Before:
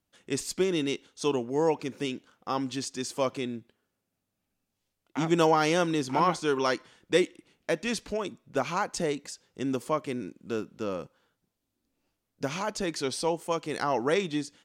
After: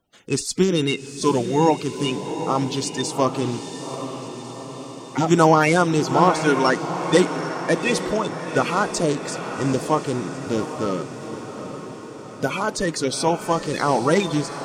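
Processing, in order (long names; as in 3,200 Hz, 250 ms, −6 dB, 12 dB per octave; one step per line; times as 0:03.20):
spectral magnitudes quantised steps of 30 dB
feedback delay with all-pass diffusion 805 ms, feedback 61%, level −9.5 dB
level +8.5 dB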